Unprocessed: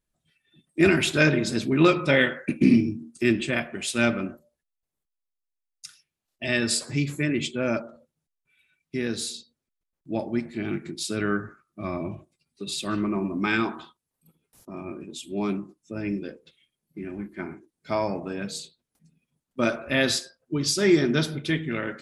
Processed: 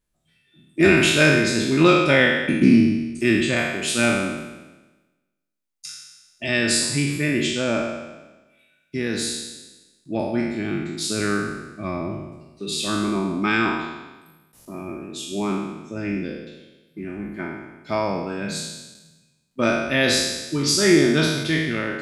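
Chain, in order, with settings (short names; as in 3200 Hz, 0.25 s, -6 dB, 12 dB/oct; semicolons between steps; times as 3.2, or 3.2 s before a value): spectral trails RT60 1.14 s; gain +1.5 dB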